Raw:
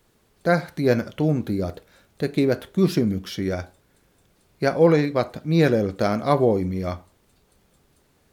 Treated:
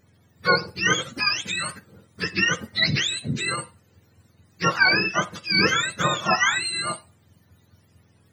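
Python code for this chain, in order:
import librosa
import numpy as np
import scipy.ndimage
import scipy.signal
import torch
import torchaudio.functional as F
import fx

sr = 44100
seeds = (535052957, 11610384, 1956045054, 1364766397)

y = fx.octave_mirror(x, sr, pivot_hz=870.0)
y = y * librosa.db_to_amplitude(2.5)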